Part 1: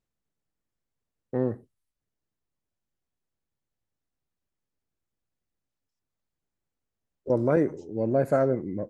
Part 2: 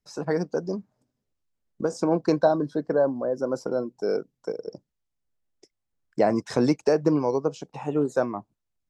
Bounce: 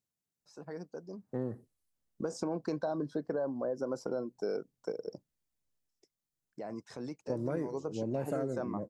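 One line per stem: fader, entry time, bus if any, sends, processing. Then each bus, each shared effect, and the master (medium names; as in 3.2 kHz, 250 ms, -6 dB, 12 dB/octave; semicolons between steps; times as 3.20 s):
-8.0 dB, 0.00 s, no send, high-pass 110 Hz; tone controls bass +5 dB, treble +10 dB
1.10 s -16.5 dB -> 1.37 s -5 dB -> 5.75 s -5 dB -> 6.15 s -16 dB -> 7.45 s -16 dB -> 7.96 s -7.5 dB, 0.40 s, no send, peak limiter -16 dBFS, peak gain reduction 7 dB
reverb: none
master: compression, threshold -30 dBFS, peak gain reduction 7.5 dB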